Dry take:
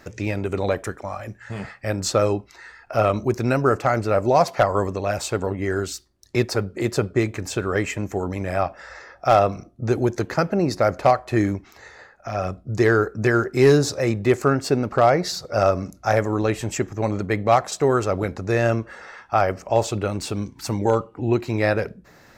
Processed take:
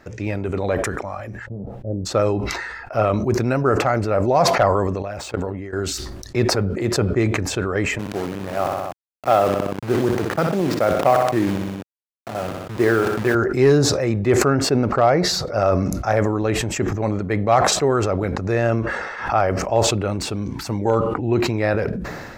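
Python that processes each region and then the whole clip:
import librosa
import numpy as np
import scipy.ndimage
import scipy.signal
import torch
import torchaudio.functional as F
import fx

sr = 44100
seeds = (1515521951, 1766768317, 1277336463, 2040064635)

y = fx.cheby2_lowpass(x, sr, hz=2400.0, order=4, stop_db=70, at=(1.45, 2.05), fade=0.02)
y = fx.dmg_noise_colour(y, sr, seeds[0], colour='brown', level_db=-66.0, at=(1.45, 2.05), fade=0.02)
y = fx.chain(y, sr, fx.median_filter(points=3),
    fx.level_steps(step_db=20), at=(5.02, 5.73))
y = fx.chain(y, sr, fx.delta_hold(step_db=-24.5),
    fx.highpass(hz=140.0, slope=12),
    fx.echo_feedback(ms=62, feedback_pct=39, wet_db=-13), at=(7.99, 13.35))
y = fx.chain(y, sr, fx.quant_float(bits=8),
    fx.pre_swell(db_per_s=86.0), at=(17.98, 19.66))
y = fx.high_shelf(y, sr, hz=3800.0, db=-8.5)
y = fx.sustainer(y, sr, db_per_s=33.0)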